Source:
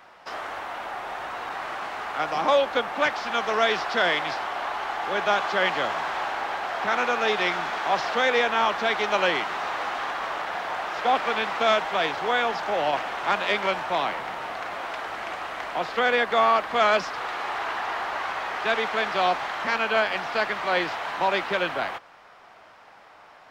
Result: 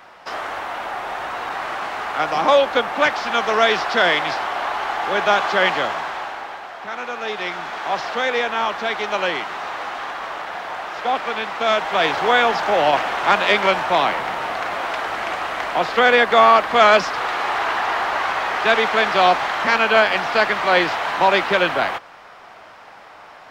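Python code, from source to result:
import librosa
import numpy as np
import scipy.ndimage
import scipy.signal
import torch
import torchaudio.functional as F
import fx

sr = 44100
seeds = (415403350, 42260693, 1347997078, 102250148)

y = fx.gain(x, sr, db=fx.line((5.69, 6.0), (6.79, -6.0), (7.89, 1.0), (11.58, 1.0), (12.13, 8.0)))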